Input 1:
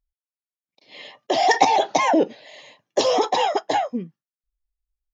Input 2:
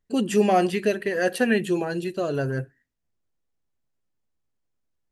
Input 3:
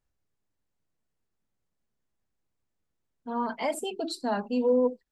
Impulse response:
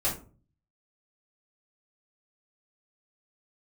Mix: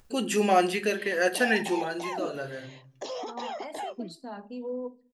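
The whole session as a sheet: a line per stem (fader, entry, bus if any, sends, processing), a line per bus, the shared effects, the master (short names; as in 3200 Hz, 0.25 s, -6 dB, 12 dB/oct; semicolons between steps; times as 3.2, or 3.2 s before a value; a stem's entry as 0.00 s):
-7.0 dB, 0.05 s, no send, compressor 3:1, threshold -24 dBFS, peak gain reduction 10.5 dB; HPF 160 Hz; limiter -20.5 dBFS, peak gain reduction 10.5 dB
+0.5 dB, 0.00 s, send -16 dB, expander -35 dBFS; low shelf 470 Hz -10.5 dB; auto duck -16 dB, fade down 1.75 s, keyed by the third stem
-12.0 dB, 0.00 s, send -22.5 dB, dry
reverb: on, RT60 0.40 s, pre-delay 3 ms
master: upward compressor, threshold -37 dBFS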